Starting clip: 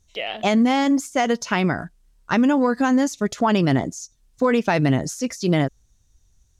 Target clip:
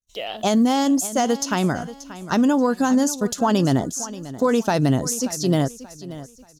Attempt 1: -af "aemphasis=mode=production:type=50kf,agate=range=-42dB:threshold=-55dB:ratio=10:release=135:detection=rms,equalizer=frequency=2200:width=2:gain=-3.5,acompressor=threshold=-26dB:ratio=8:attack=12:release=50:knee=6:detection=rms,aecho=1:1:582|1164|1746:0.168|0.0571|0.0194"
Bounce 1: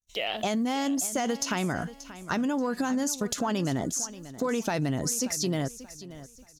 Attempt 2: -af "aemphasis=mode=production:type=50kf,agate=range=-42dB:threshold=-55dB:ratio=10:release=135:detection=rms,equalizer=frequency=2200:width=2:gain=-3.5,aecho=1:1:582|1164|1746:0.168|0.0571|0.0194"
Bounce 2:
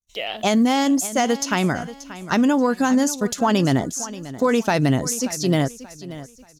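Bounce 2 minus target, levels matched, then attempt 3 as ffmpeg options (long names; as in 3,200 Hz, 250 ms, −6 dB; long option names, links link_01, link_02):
2,000 Hz band +4.0 dB
-af "aemphasis=mode=production:type=50kf,agate=range=-42dB:threshold=-55dB:ratio=10:release=135:detection=rms,equalizer=frequency=2200:width=2:gain=-11.5,aecho=1:1:582|1164|1746:0.168|0.0571|0.0194"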